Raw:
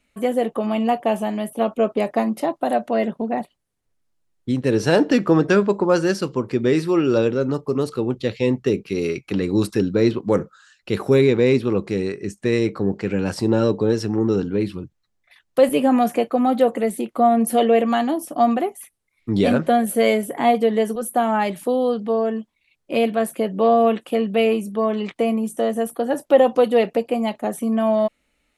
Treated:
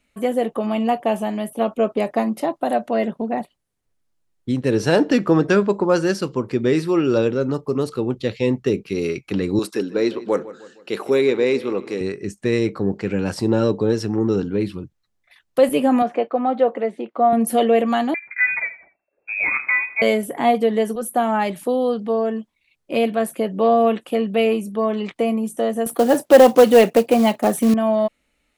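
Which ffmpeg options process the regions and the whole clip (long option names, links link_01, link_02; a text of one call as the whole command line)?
ffmpeg -i in.wav -filter_complex "[0:a]asettb=1/sr,asplit=3[link_01][link_02][link_03];[link_01]atrim=end=9.594[link_04];[link_02]atrim=start=9.59:end=12.01,asetpts=PTS-STARTPTS,afade=type=in:duration=0.004:curve=qsin,afade=type=out:start_time=2.416:duration=0.004:curve=qsin,highpass=320,asplit=2[link_05][link_06];[link_06]adelay=155,lowpass=frequency=3400:poles=1,volume=-16.5dB,asplit=2[link_07][link_08];[link_08]adelay=155,lowpass=frequency=3400:poles=1,volume=0.47,asplit=2[link_09][link_10];[link_10]adelay=155,lowpass=frequency=3400:poles=1,volume=0.47,asplit=2[link_11][link_12];[link_12]adelay=155,lowpass=frequency=3400:poles=1,volume=0.47[link_13];[link_05][link_07][link_09][link_11][link_13]amix=inputs=5:normalize=0,atrim=end_sample=106722[link_14];[link_03]atrim=start=12.006[link_15];[link_04][link_14]acrossfade=duration=0.004:curve1=hsin:curve2=qsin[link_16];[link_16][link_15]acrossfade=duration=0.004:curve1=qsin:curve2=hsin,asettb=1/sr,asplit=3[link_17][link_18][link_19];[link_17]atrim=end=16.024[link_20];[link_18]atrim=start=16.02:end=17.33,asetpts=PTS-STARTPTS,afade=type=in:duration=0.004:curve=qsin,afade=type=out:start_time=1.306:duration=0.004:curve=qsin,highpass=490,lowpass=4900,aemphasis=mode=reproduction:type=riaa[link_21];[link_19]atrim=start=17.326[link_22];[link_20][link_21]acrossfade=duration=0.004:curve1=hsin:curve2=qsin[link_23];[link_23][link_22]acrossfade=duration=0.004:curve1=qsin:curve2=hsin,asettb=1/sr,asplit=3[link_24][link_25][link_26];[link_24]atrim=end=18.144[link_27];[link_25]atrim=start=18.14:end=20.02,asetpts=PTS-STARTPTS,afade=type=in:duration=0.004:curve=qsin,afade=type=out:start_time=1.876:duration=0.004:curve=qsin,lowshelf=frequency=390:gain=-8.5,aecho=1:1:81|162|243:0.168|0.0537|0.0172,atrim=end_sample=82908,lowpass=frequency=2300:width_type=q:width=0.5098,lowpass=frequency=2300:width_type=q:width=0.6013,lowpass=frequency=2300:width_type=q:width=0.9,lowpass=frequency=2300:width_type=q:width=2.563,afreqshift=-2700[link_28];[link_26]atrim=start=20.016[link_29];[link_27][link_28]acrossfade=duration=0.004:curve1=hsin:curve2=qsin[link_30];[link_30][link_29]acrossfade=duration=0.004:curve1=qsin:curve2=hsin,asettb=1/sr,asplit=3[link_31][link_32][link_33];[link_31]atrim=end=25.864[link_34];[link_32]atrim=start=25.86:end=27.74,asetpts=PTS-STARTPTS,afade=type=in:duration=0.004:curve=qsin,afade=type=out:start_time=1.876:duration=0.004:curve=qsin,highpass=89,acontrast=77,acrusher=bits=5:mode=log:mix=0:aa=0.000001[link_35];[link_33]atrim=start=27.736[link_36];[link_34][link_35]acrossfade=duration=0.004:curve1=hsin:curve2=qsin[link_37];[link_37][link_36]acrossfade=duration=0.004:curve1=qsin:curve2=hsin" out.wav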